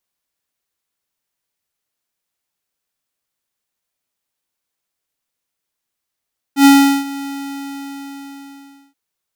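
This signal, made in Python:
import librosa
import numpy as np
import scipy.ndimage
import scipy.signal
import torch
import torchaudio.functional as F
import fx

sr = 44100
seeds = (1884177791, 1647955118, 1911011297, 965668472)

y = fx.adsr_tone(sr, wave='square', hz=278.0, attack_ms=90.0, decay_ms=388.0, sustain_db=-19.5, held_s=0.68, release_ms=1700.0, level_db=-6.0)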